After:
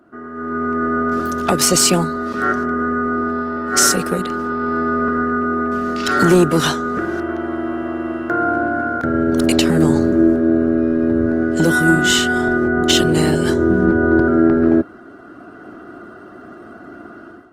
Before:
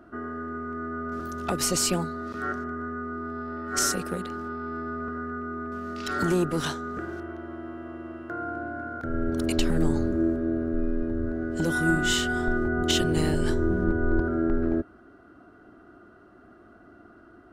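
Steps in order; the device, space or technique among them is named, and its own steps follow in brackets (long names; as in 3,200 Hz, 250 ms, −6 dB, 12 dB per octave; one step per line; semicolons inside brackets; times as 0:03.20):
video call (high-pass filter 120 Hz 12 dB per octave; automatic gain control gain up to 15.5 dB; Opus 20 kbit/s 48,000 Hz)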